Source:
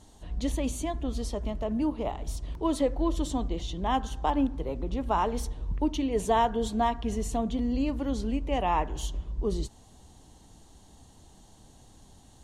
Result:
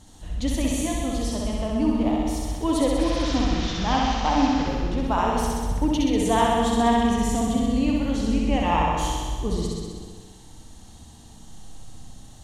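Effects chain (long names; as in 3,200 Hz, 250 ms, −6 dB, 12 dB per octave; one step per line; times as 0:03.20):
0:02.98–0:04.67: linear delta modulator 32 kbit/s, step −32 dBFS
thirty-one-band graphic EQ 400 Hz −9 dB, 630 Hz −5 dB, 1,000 Hz −4 dB
on a send: flutter between parallel walls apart 11 metres, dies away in 1.5 s
on the sum: comb and all-pass reverb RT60 1.3 s, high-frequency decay 0.55×, pre-delay 30 ms, DRR 5.5 dB
level +4.5 dB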